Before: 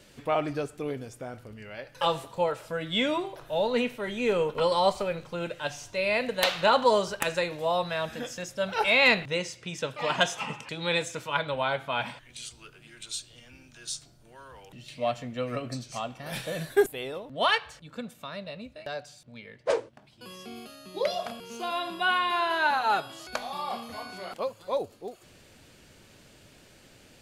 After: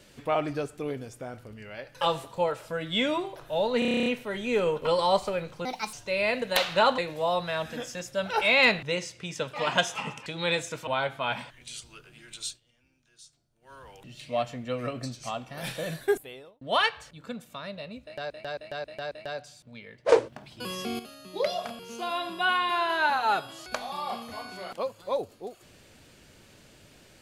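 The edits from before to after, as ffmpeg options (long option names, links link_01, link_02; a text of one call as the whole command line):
ffmpeg -i in.wav -filter_complex "[0:a]asplit=23[link_01][link_02][link_03][link_04][link_05][link_06][link_07][link_08][link_09][link_10][link_11][link_12][link_13][link_14][link_15][link_16][link_17][link_18][link_19][link_20][link_21][link_22][link_23];[link_01]atrim=end=3.822[link_24];[link_02]atrim=start=3.788:end=3.822[link_25];[link_03]atrim=start=3.788:end=3.822[link_26];[link_04]atrim=start=3.788:end=3.822[link_27];[link_05]atrim=start=3.788:end=3.822[link_28];[link_06]atrim=start=3.788:end=3.822[link_29];[link_07]atrim=start=3.788:end=3.822[link_30];[link_08]atrim=start=3.788:end=3.822[link_31];[link_09]atrim=start=3.788:end=3.822[link_32];[link_10]atrim=start=3.788:end=5.384[link_33];[link_11]atrim=start=5.38:end=5.8,asetpts=PTS-STARTPTS,asetrate=65709,aresample=44100[link_34];[link_12]atrim=start=5.796:end=6.852[link_35];[link_13]atrim=start=7.408:end=11.302[link_36];[link_14]atrim=start=11.558:end=13.29,asetpts=PTS-STARTPTS,afade=type=out:start_time=1.612:duration=0.12:silence=0.141254[link_37];[link_15]atrim=start=13.29:end=14.3,asetpts=PTS-STARTPTS,volume=-17dB[link_38];[link_16]atrim=start=14.3:end=17.3,asetpts=PTS-STARTPTS,afade=type=in:duration=0.12:silence=0.141254,afade=type=out:start_time=2.27:duration=0.73[link_39];[link_17]atrim=start=17.3:end=18.992,asetpts=PTS-STARTPTS,afade=type=in:duration=0.004:curve=hsin[link_40];[link_18]atrim=start=18.718:end=18.992[link_41];[link_19]atrim=start=18.718:end=18.992[link_42];[link_20]atrim=start=18.718:end=18.992[link_43];[link_21]atrim=start=18.718:end=19.732[link_44];[link_22]atrim=start=19.728:end=20.602,asetpts=PTS-STARTPTS,volume=9.5dB[link_45];[link_23]atrim=start=20.598[link_46];[link_24][link_25]acrossfade=duration=0.004:curve1=hsin:curve2=hsin[link_47];[link_47][link_26]acrossfade=duration=0.004:curve1=hsin:curve2=hsin[link_48];[link_48][link_27]acrossfade=duration=0.004:curve1=hsin:curve2=hsin[link_49];[link_49][link_28]acrossfade=duration=0.004:curve1=hsin:curve2=hsin[link_50];[link_50][link_29]acrossfade=duration=0.004:curve1=hsin:curve2=hsin[link_51];[link_51][link_30]acrossfade=duration=0.004:curve1=hsin:curve2=hsin[link_52];[link_52][link_31]acrossfade=duration=0.004:curve1=hsin:curve2=hsin[link_53];[link_53][link_32]acrossfade=duration=0.004:curve1=hsin:curve2=hsin[link_54];[link_54][link_33]acrossfade=duration=0.004:curve1=hsin:curve2=hsin[link_55];[link_55][link_34]acrossfade=duration=0.004:curve1=hsin:curve2=hsin[link_56];[link_56][link_35]acrossfade=duration=0.004:curve1=hsin:curve2=hsin[link_57];[link_57][link_36]acrossfade=duration=0.004:curve1=hsin:curve2=hsin[link_58];[link_37][link_38][link_39][link_40]concat=n=4:v=0:a=1[link_59];[link_58][link_59]acrossfade=duration=0.004:curve1=hsin:curve2=hsin[link_60];[link_60][link_41]acrossfade=duration=0.004:curve1=hsin:curve2=hsin[link_61];[link_61][link_42]acrossfade=duration=0.004:curve1=hsin:curve2=hsin[link_62];[link_62][link_43]acrossfade=duration=0.004:curve1=hsin:curve2=hsin[link_63];[link_63][link_44]acrossfade=duration=0.004:curve1=hsin:curve2=hsin[link_64];[link_64][link_45]acrossfade=duration=0.004:curve1=hsin:curve2=hsin[link_65];[link_65][link_46]acrossfade=duration=0.004:curve1=hsin:curve2=hsin" out.wav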